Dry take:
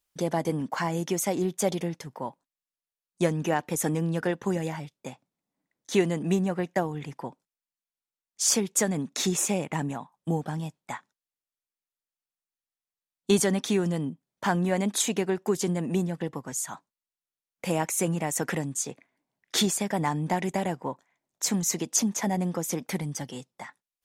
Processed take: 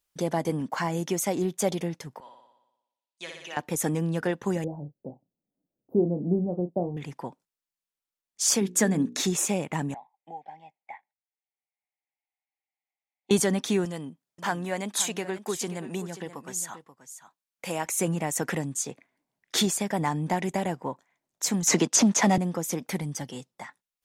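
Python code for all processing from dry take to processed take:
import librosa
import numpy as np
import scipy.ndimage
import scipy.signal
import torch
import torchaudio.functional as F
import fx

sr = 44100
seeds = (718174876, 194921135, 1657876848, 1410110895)

y = fx.chain(x, sr, fx.bandpass_q(hz=3300.0, q=1.5),
    fx.room_flutter(wall_m=10.2, rt60_s=0.95), at=(2.2, 3.57))
y = fx.chain(y, sr, fx.cheby2_bandstop(low_hz=1900.0, high_hz=9500.0, order=4, stop_db=60),
    fx.doubler(ms=34.0, db=-10), at=(4.64, 6.97))
y = fx.chain(y, sr, fx.hum_notches(base_hz=60, count=9),
    fx.small_body(hz=(250.0, 1700.0), ring_ms=20, db=8), at=(8.61, 9.21))
y = fx.chain(y, sr, fx.double_bandpass(hz=1300.0, octaves=1.4),
    fx.air_absorb(metres=65.0),
    fx.band_squash(depth_pct=40), at=(9.94, 13.31))
y = fx.chain(y, sr, fx.low_shelf(hz=450.0, db=-9.5),
    fx.echo_single(ms=532, db=-13.0), at=(13.85, 17.86))
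y = fx.chain(y, sr, fx.leveller(passes=2),
    fx.bandpass_edges(low_hz=120.0, high_hz=7800.0),
    fx.band_squash(depth_pct=70), at=(21.67, 22.38))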